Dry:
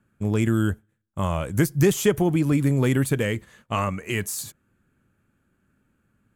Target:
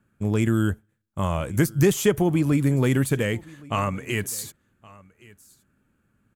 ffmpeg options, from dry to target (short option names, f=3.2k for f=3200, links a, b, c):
-af "aecho=1:1:1118:0.0668"